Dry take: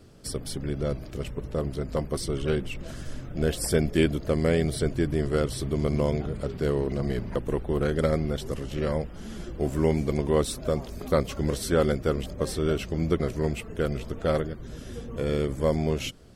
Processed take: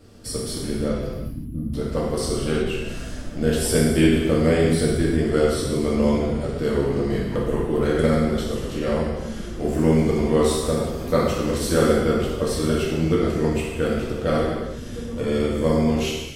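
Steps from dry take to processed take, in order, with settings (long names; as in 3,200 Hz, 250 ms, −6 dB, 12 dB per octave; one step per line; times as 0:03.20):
gain on a spectral selection 0:01.12–0:01.73, 330–9,700 Hz −28 dB
reverb whose tail is shaped and stops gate 400 ms falling, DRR −5 dB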